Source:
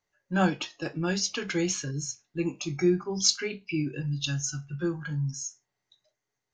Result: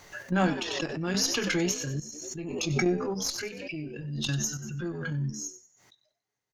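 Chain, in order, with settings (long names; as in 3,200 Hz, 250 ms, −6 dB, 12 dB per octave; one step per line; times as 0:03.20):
in parallel at 0 dB: output level in coarse steps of 16 dB
on the sum: tube saturation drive 12 dB, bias 0.6
echo with shifted repeats 94 ms, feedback 34%, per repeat +77 Hz, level −13 dB
sample-and-hold tremolo, depth 75%
background raised ahead of every attack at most 32 dB per second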